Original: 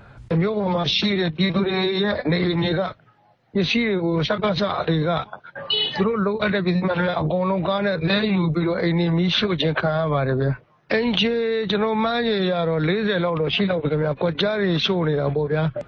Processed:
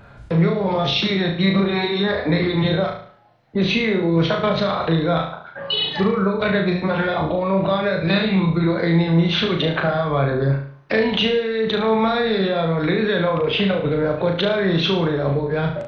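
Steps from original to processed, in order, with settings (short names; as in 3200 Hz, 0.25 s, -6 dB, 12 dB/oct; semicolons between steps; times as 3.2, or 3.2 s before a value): dynamic EQ 5200 Hz, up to -5 dB, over -42 dBFS, Q 2.1; flutter echo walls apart 6.2 m, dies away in 0.52 s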